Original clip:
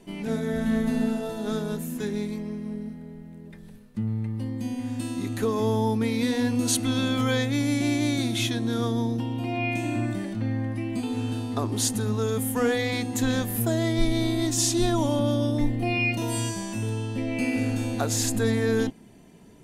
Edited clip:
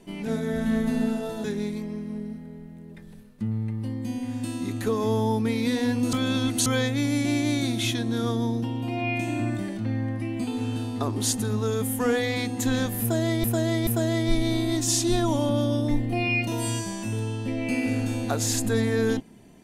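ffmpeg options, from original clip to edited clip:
-filter_complex "[0:a]asplit=6[s0][s1][s2][s3][s4][s5];[s0]atrim=end=1.442[s6];[s1]atrim=start=1.998:end=6.692[s7];[s2]atrim=start=6.688:end=7.222,asetpts=PTS-STARTPTS,areverse[s8];[s3]atrim=start=7.218:end=14.002[s9];[s4]atrim=start=13.568:end=14.002[s10];[s5]atrim=start=13.568[s11];[s6][s7]acrossfade=d=0.004:c1=hsin:c2=hsin[s12];[s12][s8]acrossfade=d=0.004:c1=hsin:c2=hsin[s13];[s13][s9]acrossfade=d=0.004:c1=hsin:c2=hsin[s14];[s14][s10]acrossfade=d=0.004:c1=hsin:c2=hsin[s15];[s15][s11]acrossfade=d=0.004:c1=hsin:c2=hsin"

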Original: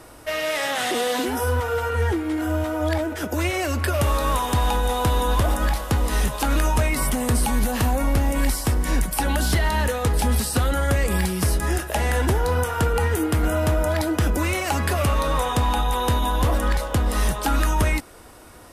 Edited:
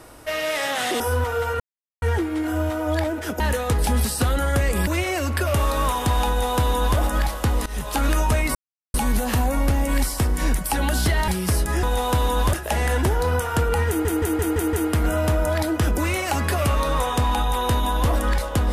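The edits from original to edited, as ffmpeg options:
-filter_complex "[0:a]asplit=16[s0][s1][s2][s3][s4][s5][s6][s7][s8][s9][s10][s11][s12][s13][s14][s15];[s0]atrim=end=1.002[s16];[s1]atrim=start=1.358:end=1.96,asetpts=PTS-STARTPTS,afade=t=out:st=0.598:d=0.004:c=hsin,apad=pad_dur=0.42[s17];[s2]atrim=start=1.96:end=3.342,asetpts=PTS-STARTPTS,afade=t=in:d=0.004:c=hsin[s18];[s3]atrim=start=9.748:end=11.222[s19];[s4]atrim=start=3.338:end=6.13,asetpts=PTS-STARTPTS,afade=t=out:st=2.788:d=0.004:c=hsin:silence=0.0891251[s20];[s5]atrim=start=6.13:end=7.02,asetpts=PTS-STARTPTS,afade=t=in:d=0.26:silence=0.0891251,afade=t=out:st=0.886:d=0.004:c=hsin[s21];[s6]atrim=start=7.02:end=7.41,asetpts=PTS-STARTPTS,volume=0[s22];[s7]atrim=start=7.41:end=9.752,asetpts=PTS-STARTPTS,afade=t=in:d=0.004:c=hsin[s23];[s8]atrim=start=11.218:end=11.772[s24];[s9]atrim=start=4.748:end=5.452[s25];[s10]atrim=start=11.768:end=13.292[s26];[s11]atrim=start=13.118:end=13.292[s27];[s12]atrim=start=13.118:end=13.292[s28];[s13]atrim=start=13.118:end=13.292[s29];[s14]atrim=start=13.118:end=13.292[s30];[s15]atrim=start=13.118[s31];[s17][s18]concat=n=2:v=0:a=1[s32];[s16][s32]acrossfade=d=0.004:c1=hsin:c2=hsin[s33];[s33][s19]acrossfade=d=0.004:c1=hsin:c2=hsin[s34];[s20][s21][s22][s23]concat=n=4:v=0:a=1[s35];[s34][s35]acrossfade=d=0.004:c1=hsin:c2=hsin[s36];[s36][s24]acrossfade=d=0.004:c1=hsin:c2=hsin[s37];[s37][s25]acrossfade=d=0.004:c1=hsin:c2=hsin[s38];[s38][s26]acrossfade=d=0.004:c1=hsin:c2=hsin[s39];[s39][s27]acrossfade=d=0.004:c1=hsin:c2=hsin[s40];[s40][s28]acrossfade=d=0.004:c1=hsin:c2=hsin[s41];[s41][s29]acrossfade=d=0.004:c1=hsin:c2=hsin[s42];[s42][s30]acrossfade=d=0.004:c1=hsin:c2=hsin[s43];[s43][s31]acrossfade=d=0.004:c1=hsin:c2=hsin"

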